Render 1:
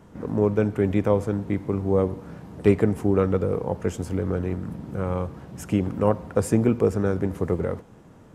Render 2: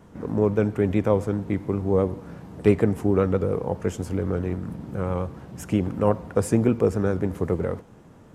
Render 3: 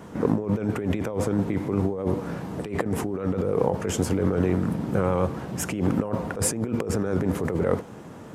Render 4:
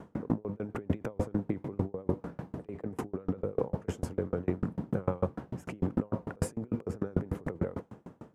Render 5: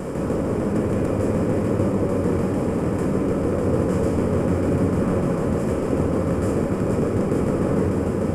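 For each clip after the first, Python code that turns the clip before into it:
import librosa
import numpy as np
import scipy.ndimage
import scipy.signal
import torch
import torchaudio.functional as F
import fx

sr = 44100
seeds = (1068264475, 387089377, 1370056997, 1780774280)

y1 = fx.vibrato(x, sr, rate_hz=7.5, depth_cents=48.0)
y2 = fx.highpass(y1, sr, hz=160.0, slope=6)
y2 = fx.over_compress(y2, sr, threshold_db=-30.0, ratio=-1.0)
y2 = F.gain(torch.from_numpy(y2), 5.0).numpy()
y3 = fx.high_shelf(y2, sr, hz=2100.0, db=-11.5)
y3 = fx.tremolo_decay(y3, sr, direction='decaying', hz=6.7, depth_db=32)
y4 = fx.bin_compress(y3, sr, power=0.2)
y4 = fx.room_shoebox(y4, sr, seeds[0], volume_m3=180.0, walls='hard', distance_m=0.96)
y4 = F.gain(torch.from_numpy(y4), -5.5).numpy()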